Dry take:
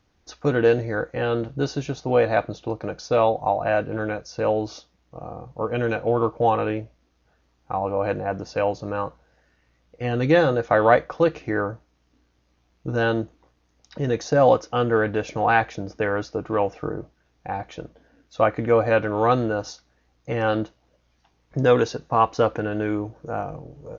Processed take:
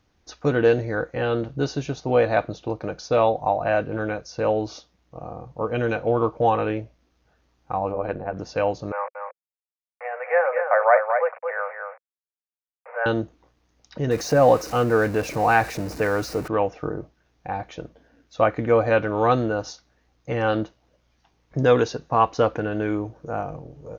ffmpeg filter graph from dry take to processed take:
-filter_complex "[0:a]asettb=1/sr,asplit=3[a][b][c];[a]atrim=end=7.924[d];[b]atrim=start=7.92:end=8.37,asetpts=PTS-STARTPTS,afade=t=in:d=0.004:c=qsin,afade=t=out:st=0.446:d=0.004:c=qsin,aemphasis=mode=reproduction:type=75kf,tremolo=f=84:d=0.75[e];[c]atrim=start=8.366[f];[d][e]acrossfade=d=0.004:c1=hsin:c2=qsin[g];[g][f]acrossfade=d=0.004:c1=qsin:c2=hsin,asettb=1/sr,asplit=3[h][i][j];[h]atrim=end=8.924[k];[i]atrim=start=8.92:end=13.06,asetpts=PTS-STARTPTS,afade=t=in:d=0.004:c=qsin,afade=t=out:st=4.136:d=0.004:c=qsin,aeval=exprs='val(0)*gte(abs(val(0)),0.0237)':c=same,asuperpass=centerf=1100:order=20:qfactor=0.59,aecho=1:1:227:0.501,atrim=end_sample=182574[l];[j]atrim=start=13.056[m];[k][l]acrossfade=d=0.004:c1=hsin:c2=qsin[n];[n][m]acrossfade=d=0.004:c1=qsin:c2=hsin,asettb=1/sr,asplit=3[o][p][q];[o]atrim=end=14.114[r];[p]atrim=start=14.11:end=16.48,asetpts=PTS-STARTPTS,afade=t=in:d=0.004:c=qsin,afade=t=out:st=2.366:d=0.004:c=qsin,aeval=exprs='val(0)+0.5*0.0266*sgn(val(0))':c=same,equalizer=f=3.3k:w=6.5:g=-10.5[s];[q]atrim=start=16.476[t];[r][s]acrossfade=d=0.004:c1=hsin:c2=qsin[u];[u][t]acrossfade=d=0.004:c1=qsin:c2=hsin"

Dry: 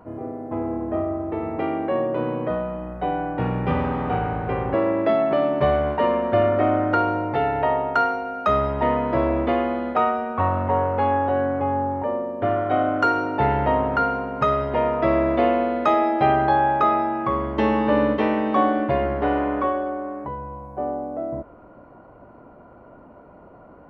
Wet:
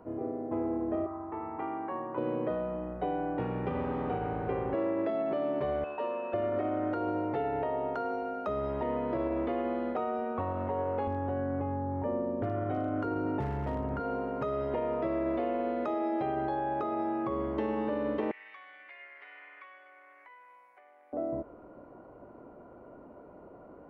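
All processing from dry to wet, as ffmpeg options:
-filter_complex "[0:a]asettb=1/sr,asplit=3[a][b][c];[a]atrim=end=1.064[d];[b]atrim=start=1.06:end=2.18,asetpts=PTS-STARTPTS,afade=t=in:d=0.004:c=qsin,afade=t=out:st=1.116:d=0.004:c=qsin,lowpass=1.8k,lowshelf=f=720:t=q:w=3:g=-8.5[e];[c]atrim=start=2.176[f];[d][e]acrossfade=d=0.004:c1=hsin:c2=qsin[g];[g][f]acrossfade=d=0.004:c1=qsin:c2=hsin,asettb=1/sr,asplit=3[h][i][j];[h]atrim=end=5.844[k];[i]atrim=start=5.84:end=6.34,asetpts=PTS-STARTPTS,afade=t=in:d=0.004:c=qsin,afade=t=out:st=0.496:d=0.004:c=qsin,highpass=f=1.3k:p=1,equalizer=f=2.1k:w=4:g=-12.5,aeval=exprs='val(0)+0.0126*sin(2*PI*2600*n/s)':c=same[l];[j]atrim=start=6.336[m];[k][l]acrossfade=d=0.004:c1=hsin:c2=qsin[n];[n][m]acrossfade=d=0.004:c1=qsin:c2=hsin,asettb=1/sr,asplit=3[o][p][q];[o]atrim=end=11.074[r];[p]atrim=start=11.07:end=14,asetpts=PTS-STARTPTS,afade=t=in:d=0.004:c=qsin,afade=t=out:st=2.926:d=0.004:c=qsin,bass=f=250:g=14,treble=f=4k:g=-14,volume=8.5dB,asoftclip=hard,volume=-8.5dB[s];[q]atrim=start=13.996[t];[r][s]acrossfade=d=0.004:c1=hsin:c2=qsin[u];[u][t]acrossfade=d=0.004:c1=qsin:c2=hsin,asettb=1/sr,asplit=3[v][w][x];[v]atrim=end=18.314[y];[w]atrim=start=18.31:end=21.13,asetpts=PTS-STARTPTS,afade=t=in:d=0.004:c=qsin,afade=t=out:st=2.816:d=0.004:c=qsin,acompressor=threshold=-30dB:ratio=12:attack=3.2:release=140:knee=1:detection=peak,highpass=f=2.1k:t=q:w=5.3[z];[x]atrim=start=21.126[aa];[y][z]acrossfade=d=0.004:c1=hsin:c2=qsin[ab];[ab][aa]acrossfade=d=0.004:c1=qsin:c2=hsin,alimiter=limit=-14.5dB:level=0:latency=1,acrossover=split=840|2400[ac][ad][ae];[ac]acompressor=threshold=-26dB:ratio=4[af];[ad]acompressor=threshold=-35dB:ratio=4[ag];[ae]acompressor=threshold=-50dB:ratio=4[ah];[af][ag][ah]amix=inputs=3:normalize=0,equalizer=f=390:w=1:g=7.5,volume=-8.5dB"

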